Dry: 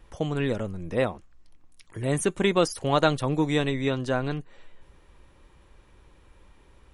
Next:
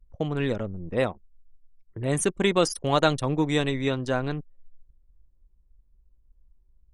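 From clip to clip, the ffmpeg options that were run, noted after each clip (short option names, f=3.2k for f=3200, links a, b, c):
-af "adynamicequalizer=threshold=0.00708:dfrequency=6900:dqfactor=0.7:tfrequency=6900:tqfactor=0.7:attack=5:release=100:ratio=0.375:range=2:mode=boostabove:tftype=bell,anlmdn=3.98"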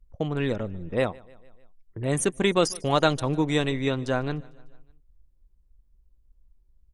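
-af "aecho=1:1:150|300|450|600:0.0631|0.0366|0.0212|0.0123"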